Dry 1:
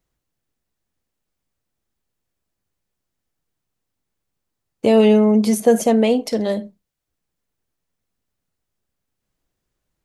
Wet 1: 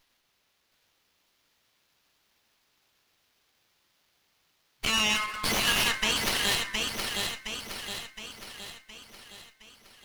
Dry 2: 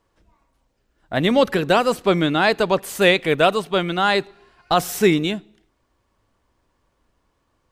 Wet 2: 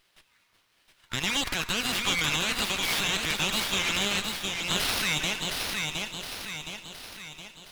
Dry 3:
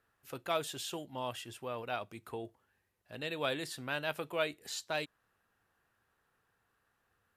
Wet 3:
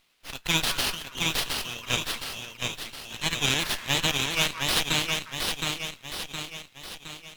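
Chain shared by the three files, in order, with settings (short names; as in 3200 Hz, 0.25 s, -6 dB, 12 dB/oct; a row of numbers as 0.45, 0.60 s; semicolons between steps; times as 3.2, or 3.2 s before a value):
pre-emphasis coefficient 0.8; spectral gate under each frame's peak -10 dB weak; weighting filter D; FFT band-reject 120–910 Hz; in parallel at 0 dB: level quantiser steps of 23 dB; on the sum: limiter -24 dBFS; on a send: split-band echo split 1700 Hz, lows 0.179 s, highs 0.716 s, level -3.5 dB; on the sum: running maximum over 5 samples; match loudness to -27 LUFS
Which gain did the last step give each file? +9.5, +8.0, +14.5 dB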